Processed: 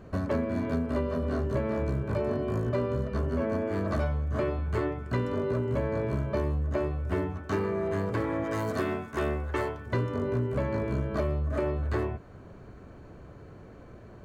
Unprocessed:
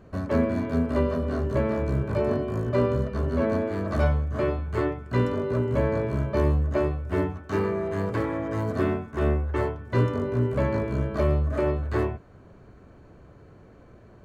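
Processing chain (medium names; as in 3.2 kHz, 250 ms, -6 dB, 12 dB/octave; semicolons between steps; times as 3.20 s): 3.19–3.75 s: band-stop 3.9 kHz, Q 5.8; 8.44–9.86 s: tilt EQ +2 dB/octave; compression, threshold -28 dBFS, peak gain reduction 11 dB; trim +2.5 dB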